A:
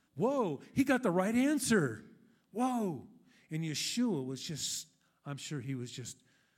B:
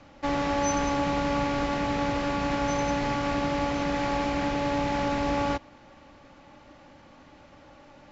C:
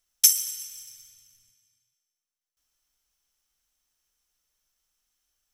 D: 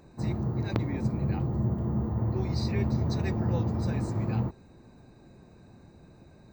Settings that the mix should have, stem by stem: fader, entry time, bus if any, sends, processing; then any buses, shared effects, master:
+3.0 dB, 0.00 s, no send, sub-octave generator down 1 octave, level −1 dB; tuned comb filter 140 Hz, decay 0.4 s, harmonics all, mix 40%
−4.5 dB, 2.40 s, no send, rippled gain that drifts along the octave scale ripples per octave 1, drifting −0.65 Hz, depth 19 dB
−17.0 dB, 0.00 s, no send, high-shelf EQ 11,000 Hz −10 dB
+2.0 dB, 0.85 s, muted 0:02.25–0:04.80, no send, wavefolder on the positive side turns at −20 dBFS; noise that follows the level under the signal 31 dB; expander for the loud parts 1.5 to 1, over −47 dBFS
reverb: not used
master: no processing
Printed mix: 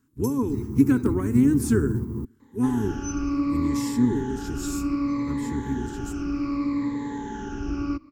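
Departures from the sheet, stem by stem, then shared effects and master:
stem A +3.0 dB → +9.5 dB
stem D: entry 0.85 s → 0.30 s
master: extra drawn EQ curve 110 Hz 0 dB, 170 Hz −7 dB, 250 Hz +6 dB, 420 Hz +1 dB, 630 Hz −25 dB, 1,000 Hz −4 dB, 3,500 Hz −15 dB, 6,100 Hz −6 dB, 16,000 Hz +2 dB

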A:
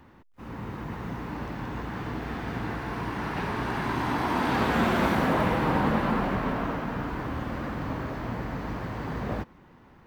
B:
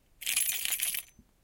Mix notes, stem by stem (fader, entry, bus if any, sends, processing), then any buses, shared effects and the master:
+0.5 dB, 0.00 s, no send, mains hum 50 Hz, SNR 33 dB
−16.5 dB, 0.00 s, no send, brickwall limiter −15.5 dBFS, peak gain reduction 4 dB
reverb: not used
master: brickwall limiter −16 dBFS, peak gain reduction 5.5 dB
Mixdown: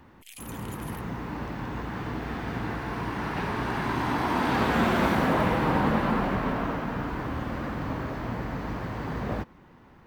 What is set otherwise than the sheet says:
stem A: missing mains hum 50 Hz, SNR 33 dB
master: missing brickwall limiter −16 dBFS, peak gain reduction 5.5 dB

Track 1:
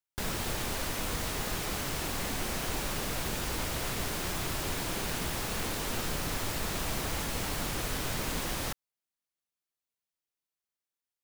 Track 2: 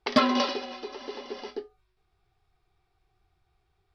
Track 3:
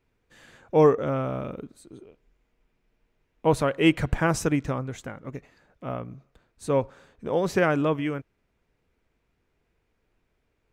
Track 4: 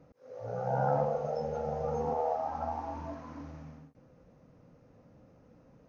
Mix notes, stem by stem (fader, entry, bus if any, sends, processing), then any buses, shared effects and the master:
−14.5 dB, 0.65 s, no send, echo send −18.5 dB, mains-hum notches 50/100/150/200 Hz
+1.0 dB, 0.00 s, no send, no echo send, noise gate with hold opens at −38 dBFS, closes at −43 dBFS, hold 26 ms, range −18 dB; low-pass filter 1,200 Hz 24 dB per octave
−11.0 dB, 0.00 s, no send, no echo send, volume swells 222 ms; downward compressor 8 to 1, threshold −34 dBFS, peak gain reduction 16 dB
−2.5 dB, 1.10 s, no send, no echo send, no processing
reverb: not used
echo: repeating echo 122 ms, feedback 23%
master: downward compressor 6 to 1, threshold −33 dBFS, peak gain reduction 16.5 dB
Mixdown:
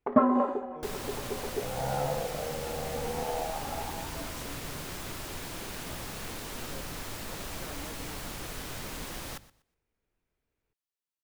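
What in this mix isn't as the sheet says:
stem 1 −14.5 dB → −5.5 dB
master: missing downward compressor 6 to 1, threshold −33 dBFS, peak gain reduction 16.5 dB

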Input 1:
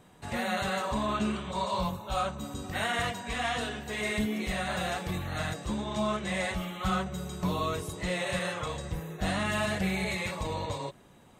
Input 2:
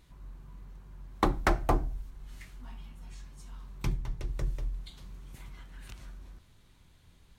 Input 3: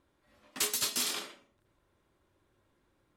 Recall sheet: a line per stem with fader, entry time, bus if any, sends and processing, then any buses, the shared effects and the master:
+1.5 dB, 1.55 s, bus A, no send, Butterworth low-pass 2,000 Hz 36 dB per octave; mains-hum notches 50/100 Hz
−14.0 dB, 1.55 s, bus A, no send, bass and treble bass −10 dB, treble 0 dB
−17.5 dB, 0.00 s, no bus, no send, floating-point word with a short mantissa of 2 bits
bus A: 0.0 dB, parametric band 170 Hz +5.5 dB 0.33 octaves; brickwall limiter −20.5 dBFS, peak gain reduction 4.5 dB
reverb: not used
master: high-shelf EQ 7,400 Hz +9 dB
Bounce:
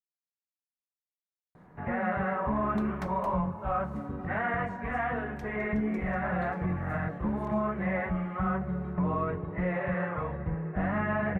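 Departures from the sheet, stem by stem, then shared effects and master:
stem 3: muted
master: missing high-shelf EQ 7,400 Hz +9 dB

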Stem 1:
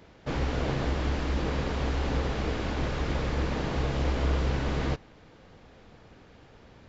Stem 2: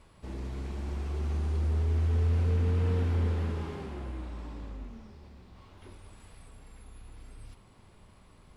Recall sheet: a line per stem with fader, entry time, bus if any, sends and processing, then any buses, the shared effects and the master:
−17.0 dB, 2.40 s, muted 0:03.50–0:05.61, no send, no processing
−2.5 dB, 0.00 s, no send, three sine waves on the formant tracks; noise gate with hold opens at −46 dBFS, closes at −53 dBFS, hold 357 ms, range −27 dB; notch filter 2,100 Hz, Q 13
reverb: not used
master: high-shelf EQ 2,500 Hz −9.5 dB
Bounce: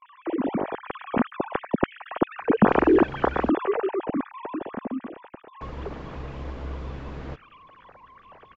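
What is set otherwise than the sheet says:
stem 1 −17.0 dB → −7.5 dB
stem 2 −2.5 dB → +5.0 dB

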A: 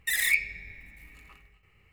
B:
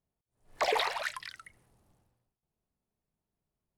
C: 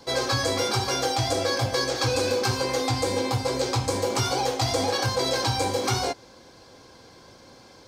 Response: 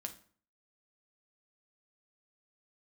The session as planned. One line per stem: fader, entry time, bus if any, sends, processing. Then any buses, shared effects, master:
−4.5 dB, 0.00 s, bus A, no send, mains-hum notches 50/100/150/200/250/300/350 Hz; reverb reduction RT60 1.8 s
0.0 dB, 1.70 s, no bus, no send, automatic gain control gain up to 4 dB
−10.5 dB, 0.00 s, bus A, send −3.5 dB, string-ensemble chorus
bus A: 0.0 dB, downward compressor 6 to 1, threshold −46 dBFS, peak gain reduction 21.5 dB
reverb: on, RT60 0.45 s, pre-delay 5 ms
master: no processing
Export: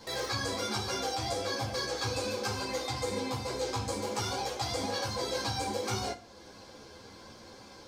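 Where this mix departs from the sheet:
stem B: muted
stem C −10.5 dB → −0.5 dB

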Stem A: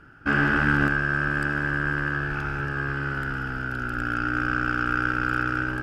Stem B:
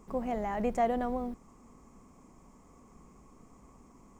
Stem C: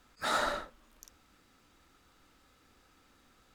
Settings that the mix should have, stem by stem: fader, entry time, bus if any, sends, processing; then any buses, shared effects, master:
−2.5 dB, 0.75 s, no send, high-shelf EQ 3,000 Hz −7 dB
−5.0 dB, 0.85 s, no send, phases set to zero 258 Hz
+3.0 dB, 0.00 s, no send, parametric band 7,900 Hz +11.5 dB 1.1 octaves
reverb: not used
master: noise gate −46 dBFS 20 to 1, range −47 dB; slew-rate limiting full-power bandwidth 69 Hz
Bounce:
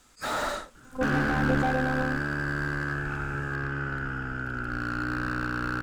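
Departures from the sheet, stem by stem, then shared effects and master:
stem B −5.0 dB → +3.5 dB
master: missing noise gate −46 dBFS 20 to 1, range −47 dB

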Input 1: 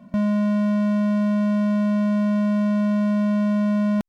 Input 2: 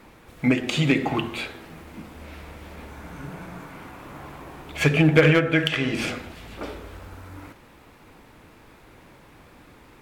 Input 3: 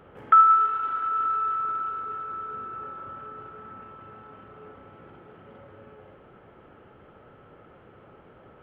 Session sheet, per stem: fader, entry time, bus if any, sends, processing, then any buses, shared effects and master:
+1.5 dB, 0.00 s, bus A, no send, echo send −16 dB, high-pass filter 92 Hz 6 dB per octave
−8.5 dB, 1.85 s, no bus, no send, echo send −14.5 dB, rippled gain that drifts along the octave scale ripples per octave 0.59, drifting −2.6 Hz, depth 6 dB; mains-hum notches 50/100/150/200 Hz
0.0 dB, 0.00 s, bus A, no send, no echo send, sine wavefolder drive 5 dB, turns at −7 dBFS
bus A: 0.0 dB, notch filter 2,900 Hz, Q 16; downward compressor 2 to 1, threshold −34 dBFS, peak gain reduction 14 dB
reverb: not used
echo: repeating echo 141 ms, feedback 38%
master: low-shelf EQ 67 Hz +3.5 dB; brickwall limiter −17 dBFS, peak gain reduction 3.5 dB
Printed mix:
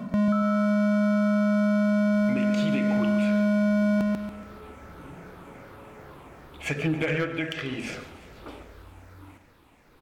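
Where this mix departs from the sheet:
stem 1 +1.5 dB → +13.0 dB
stem 3: missing sine wavefolder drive 5 dB, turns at −7 dBFS

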